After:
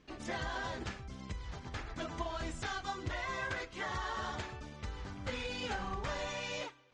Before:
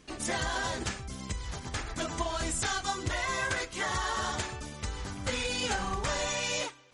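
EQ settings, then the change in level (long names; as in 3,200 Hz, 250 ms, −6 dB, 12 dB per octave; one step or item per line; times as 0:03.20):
high-frequency loss of the air 140 metres
−5.5 dB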